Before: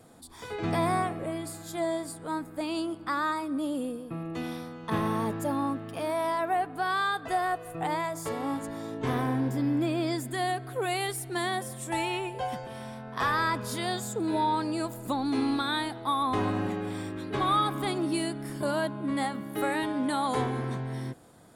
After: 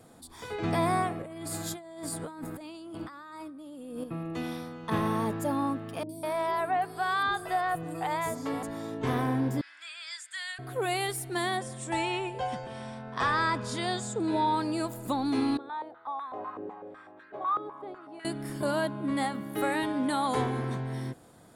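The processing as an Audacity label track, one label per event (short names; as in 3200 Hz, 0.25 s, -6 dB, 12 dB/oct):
1.220000	4.040000	negative-ratio compressor -41 dBFS
6.030000	8.630000	three bands offset in time lows, highs, mids 60/200 ms, splits 380/5800 Hz
9.610000	10.590000	elliptic band-pass 1500–8300 Hz, stop band 80 dB
11.570000	14.470000	steep low-pass 9100 Hz
15.570000	18.250000	stepped band-pass 8 Hz 440–1600 Hz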